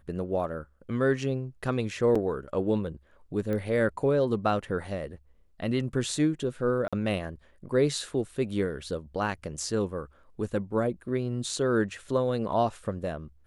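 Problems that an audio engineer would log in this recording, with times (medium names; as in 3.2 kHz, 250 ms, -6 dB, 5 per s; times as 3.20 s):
2.15–2.16 s: dropout 5.1 ms
3.53 s: pop -21 dBFS
6.88–6.93 s: dropout 46 ms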